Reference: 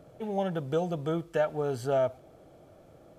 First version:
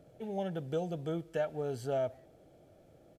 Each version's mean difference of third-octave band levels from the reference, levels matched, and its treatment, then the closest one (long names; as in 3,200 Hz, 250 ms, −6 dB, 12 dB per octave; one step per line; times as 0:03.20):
1.0 dB: parametric band 1,100 Hz −9 dB 0.61 octaves
far-end echo of a speakerphone 190 ms, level −27 dB
level −5 dB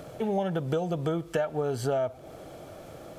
5.0 dB: downward compressor 5 to 1, threshold −34 dBFS, peak gain reduction 11 dB
one half of a high-frequency compander encoder only
level +8.5 dB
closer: first